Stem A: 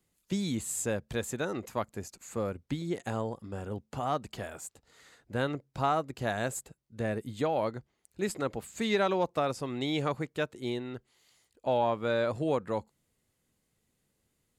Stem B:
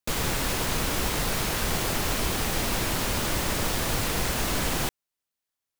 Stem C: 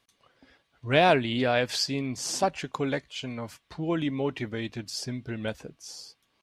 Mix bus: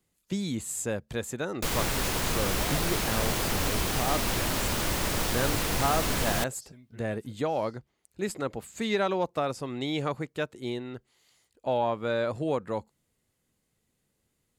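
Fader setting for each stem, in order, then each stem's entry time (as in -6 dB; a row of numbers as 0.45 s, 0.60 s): +0.5 dB, -1.5 dB, -19.0 dB; 0.00 s, 1.55 s, 1.65 s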